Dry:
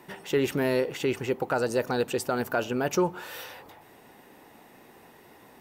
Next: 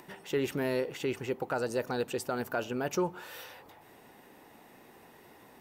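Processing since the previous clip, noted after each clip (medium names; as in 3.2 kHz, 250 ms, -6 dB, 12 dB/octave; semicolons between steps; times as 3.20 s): upward compressor, threshold -44 dBFS; trim -5.5 dB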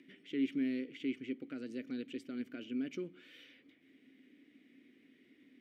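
vowel filter i; trim +4 dB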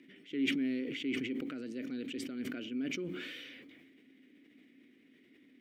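decay stretcher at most 27 dB/s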